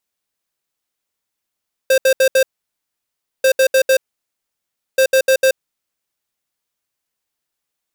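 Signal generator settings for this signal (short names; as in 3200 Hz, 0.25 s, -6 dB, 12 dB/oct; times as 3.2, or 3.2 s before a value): beep pattern square 528 Hz, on 0.08 s, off 0.07 s, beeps 4, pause 1.01 s, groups 3, -11.5 dBFS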